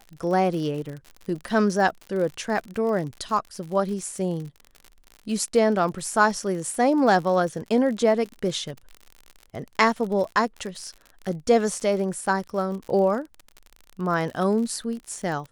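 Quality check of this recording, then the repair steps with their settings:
crackle 58/s -32 dBFS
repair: de-click

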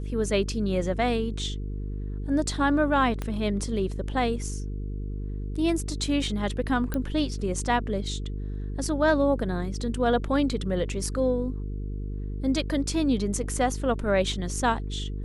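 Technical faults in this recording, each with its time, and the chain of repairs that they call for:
buzz 50 Hz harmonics 9 -32 dBFS
3.22 pop -17 dBFS
6.94 pop -15 dBFS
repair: de-click; de-hum 50 Hz, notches 9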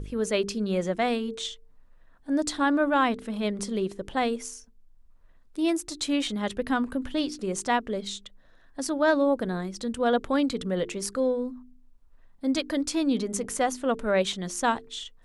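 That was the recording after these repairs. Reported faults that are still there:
3.22 pop

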